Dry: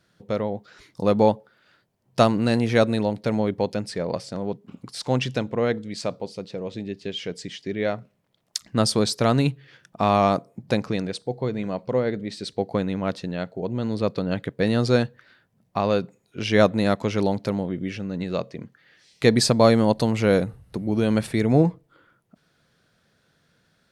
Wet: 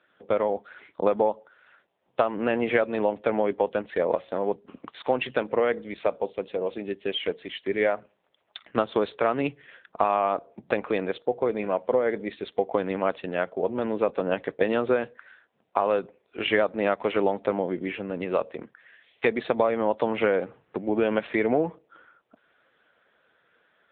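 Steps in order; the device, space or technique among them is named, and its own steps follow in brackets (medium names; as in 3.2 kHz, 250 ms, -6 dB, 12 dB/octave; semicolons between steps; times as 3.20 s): 20.79–21.58 s: dynamic bell 140 Hz, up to -3 dB, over -36 dBFS, Q 1.6; voicemail (band-pass 430–3200 Hz; compression 12:1, threshold -25 dBFS, peak gain reduction 13.5 dB; trim +7.5 dB; AMR-NB 6.7 kbps 8 kHz)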